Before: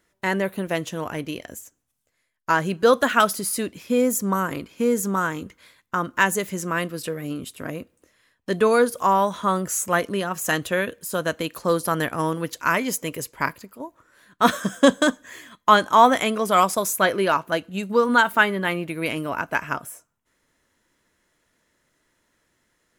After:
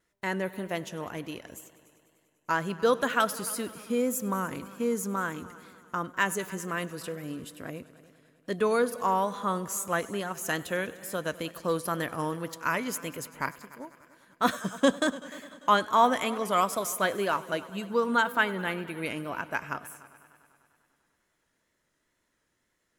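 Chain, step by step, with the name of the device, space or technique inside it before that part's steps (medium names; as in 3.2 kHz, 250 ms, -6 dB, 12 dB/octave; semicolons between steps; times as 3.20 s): multi-head tape echo (multi-head delay 99 ms, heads all three, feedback 56%, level -22.5 dB; wow and flutter 47 cents); trim -7.5 dB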